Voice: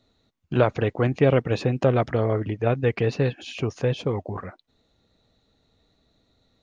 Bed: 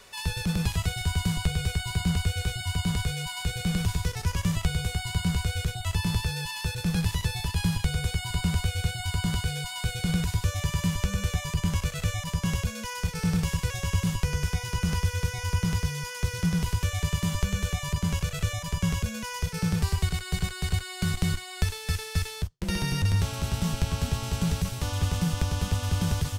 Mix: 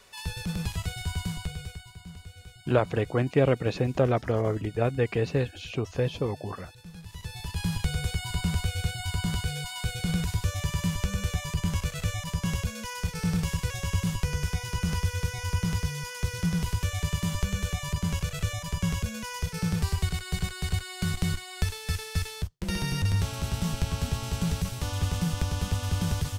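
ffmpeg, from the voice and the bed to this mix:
-filter_complex "[0:a]adelay=2150,volume=-3.5dB[a];[1:a]volume=12.5dB,afade=t=out:st=1.17:d=0.76:silence=0.199526,afade=t=in:st=7.06:d=0.77:silence=0.141254[b];[a][b]amix=inputs=2:normalize=0"

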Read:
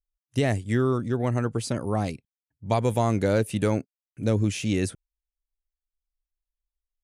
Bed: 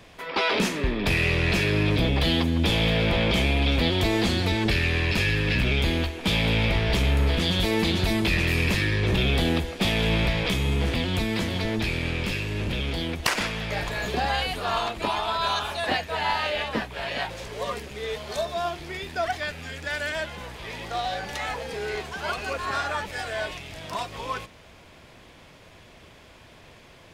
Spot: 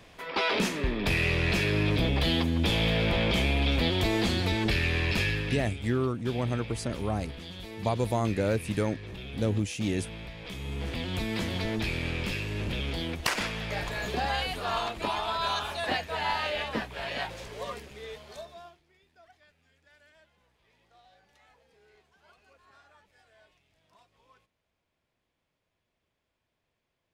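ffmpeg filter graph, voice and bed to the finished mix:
-filter_complex "[0:a]adelay=5150,volume=-4.5dB[a];[1:a]volume=11dB,afade=t=out:st=5.2:d=0.54:silence=0.177828,afade=t=in:st=10.38:d=1.09:silence=0.188365,afade=t=out:st=17.23:d=1.59:silence=0.0421697[b];[a][b]amix=inputs=2:normalize=0"

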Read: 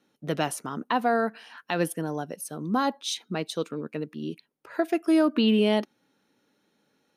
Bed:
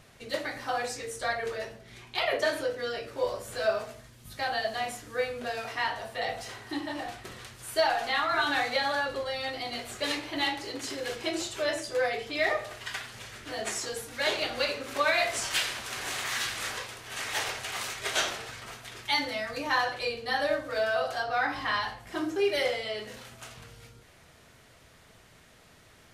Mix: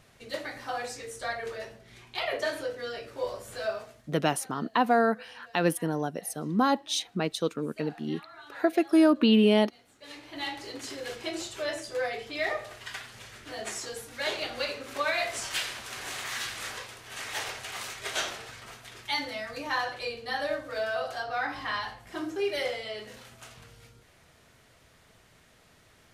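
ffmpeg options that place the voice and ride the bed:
-filter_complex "[0:a]adelay=3850,volume=1dB[a];[1:a]volume=16dB,afade=t=out:st=3.54:d=0.78:silence=0.112202,afade=t=in:st=10:d=0.65:silence=0.112202[b];[a][b]amix=inputs=2:normalize=0"

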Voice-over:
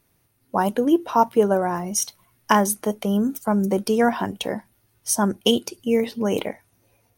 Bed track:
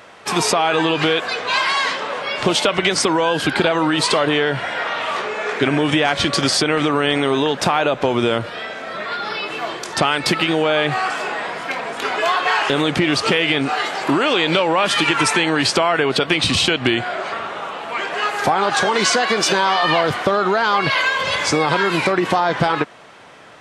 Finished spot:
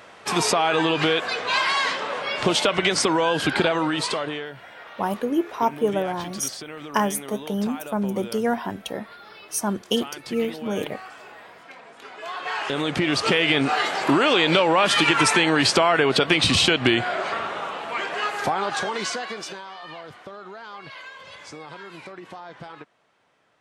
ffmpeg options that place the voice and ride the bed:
-filter_complex "[0:a]adelay=4450,volume=-4.5dB[a];[1:a]volume=14.5dB,afade=t=out:st=3.6:d=0.94:silence=0.158489,afade=t=in:st=12.17:d=1.43:silence=0.125893,afade=t=out:st=17.39:d=2.25:silence=0.0891251[b];[a][b]amix=inputs=2:normalize=0"

